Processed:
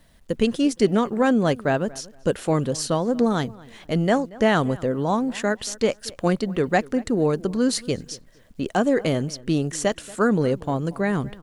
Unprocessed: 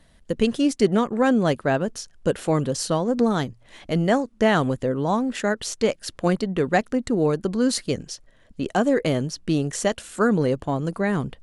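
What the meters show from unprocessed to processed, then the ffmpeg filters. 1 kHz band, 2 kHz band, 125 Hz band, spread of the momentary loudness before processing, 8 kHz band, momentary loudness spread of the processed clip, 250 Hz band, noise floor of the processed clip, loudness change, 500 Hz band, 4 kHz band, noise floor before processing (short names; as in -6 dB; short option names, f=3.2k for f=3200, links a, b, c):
0.0 dB, 0.0 dB, 0.0 dB, 7 LU, 0.0 dB, 7 LU, 0.0 dB, -53 dBFS, 0.0 dB, 0.0 dB, 0.0 dB, -55 dBFS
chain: -filter_complex "[0:a]acrusher=bits=10:mix=0:aa=0.000001,asplit=2[a][b];[b]adelay=232,lowpass=f=2.6k:p=1,volume=-21dB,asplit=2[c][d];[d]adelay=232,lowpass=f=2.6k:p=1,volume=0.24[e];[c][e]amix=inputs=2:normalize=0[f];[a][f]amix=inputs=2:normalize=0"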